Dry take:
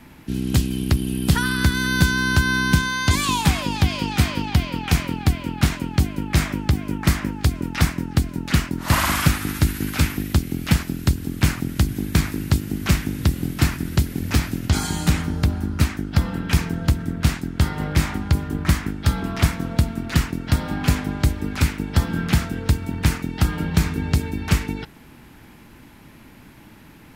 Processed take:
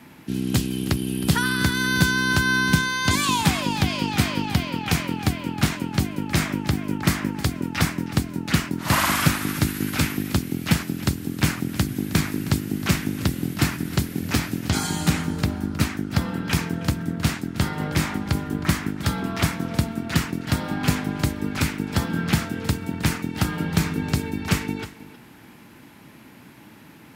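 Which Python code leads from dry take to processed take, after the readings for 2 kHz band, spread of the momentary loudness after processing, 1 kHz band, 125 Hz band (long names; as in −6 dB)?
0.0 dB, 6 LU, 0.0 dB, −4.0 dB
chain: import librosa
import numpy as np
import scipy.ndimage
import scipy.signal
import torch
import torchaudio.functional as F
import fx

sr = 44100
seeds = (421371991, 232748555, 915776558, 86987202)

y = scipy.signal.sosfilt(scipy.signal.butter(2, 120.0, 'highpass', fs=sr, output='sos'), x)
y = y + 10.0 ** (-16.0 / 20.0) * np.pad(y, (int(315 * sr / 1000.0), 0))[:len(y)]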